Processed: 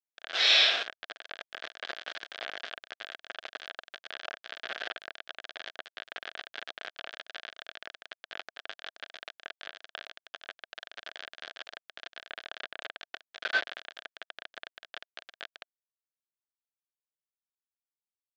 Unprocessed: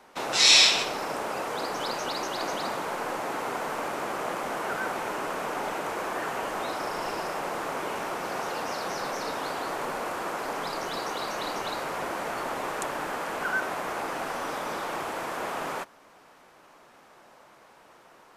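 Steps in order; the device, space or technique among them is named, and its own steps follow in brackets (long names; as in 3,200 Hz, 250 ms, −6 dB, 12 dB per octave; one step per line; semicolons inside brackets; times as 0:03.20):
hand-held game console (bit reduction 4 bits; loudspeaker in its box 480–4,400 Hz, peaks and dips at 660 Hz +7 dB, 950 Hz −9 dB, 1,600 Hz +10 dB, 3,300 Hz +7 dB)
level −6 dB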